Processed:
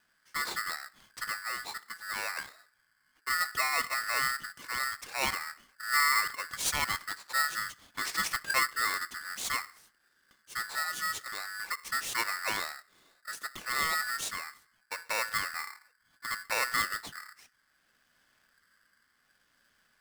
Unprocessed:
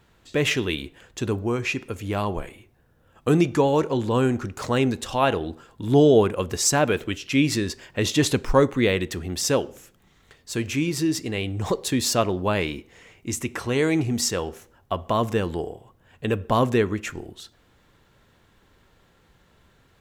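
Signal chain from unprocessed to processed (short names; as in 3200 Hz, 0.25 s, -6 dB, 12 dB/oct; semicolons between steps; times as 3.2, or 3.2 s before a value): rotary speaker horn 0.7 Hz; polarity switched at an audio rate 1600 Hz; gain -9 dB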